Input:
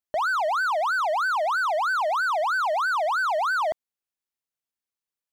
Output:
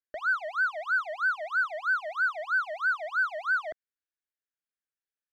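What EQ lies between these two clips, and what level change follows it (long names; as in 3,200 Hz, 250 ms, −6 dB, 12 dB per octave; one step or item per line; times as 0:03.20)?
low-pass filter 2,300 Hz 6 dB per octave
parametric band 1,600 Hz +14 dB 0.75 octaves
phaser with its sweep stopped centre 380 Hz, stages 4
−6.5 dB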